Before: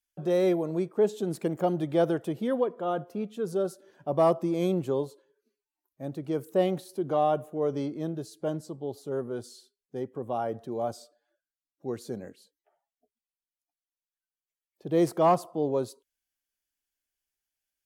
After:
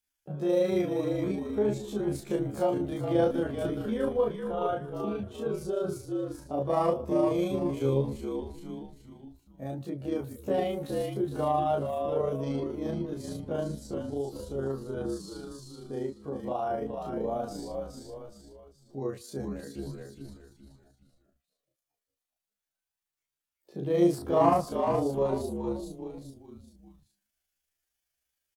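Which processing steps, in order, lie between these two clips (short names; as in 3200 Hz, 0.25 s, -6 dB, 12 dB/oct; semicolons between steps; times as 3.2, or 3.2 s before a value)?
frequency-shifting echo 0.258 s, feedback 37%, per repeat -54 Hz, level -6 dB; chorus voices 2, 0.16 Hz, delay 19 ms, depth 4.7 ms; in parallel at +2 dB: compressor, threshold -42 dBFS, peak gain reduction 22.5 dB; on the sum: granular stretch 1.6×, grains 77 ms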